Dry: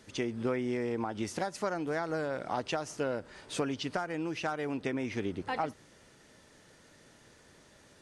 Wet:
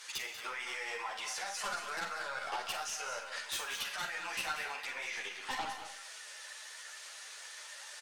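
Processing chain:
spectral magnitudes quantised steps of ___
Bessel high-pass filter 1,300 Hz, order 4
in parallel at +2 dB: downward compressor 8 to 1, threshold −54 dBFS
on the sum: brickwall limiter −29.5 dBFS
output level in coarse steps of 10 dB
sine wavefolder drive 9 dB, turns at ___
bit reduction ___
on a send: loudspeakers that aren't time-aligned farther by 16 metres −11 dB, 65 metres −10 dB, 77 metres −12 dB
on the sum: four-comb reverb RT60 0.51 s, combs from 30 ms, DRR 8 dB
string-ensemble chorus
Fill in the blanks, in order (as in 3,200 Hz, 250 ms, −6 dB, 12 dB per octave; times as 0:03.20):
15 dB, −29.5 dBFS, 12 bits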